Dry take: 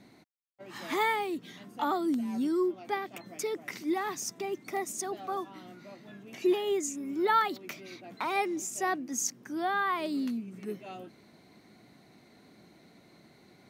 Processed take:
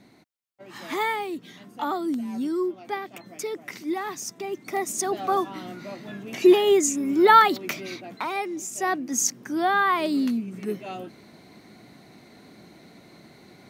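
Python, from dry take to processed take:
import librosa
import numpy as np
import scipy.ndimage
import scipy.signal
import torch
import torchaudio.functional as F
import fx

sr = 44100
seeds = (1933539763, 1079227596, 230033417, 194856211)

y = fx.gain(x, sr, db=fx.line((4.4, 2.0), (5.26, 11.0), (7.89, 11.0), (8.4, 0.0), (9.19, 8.0)))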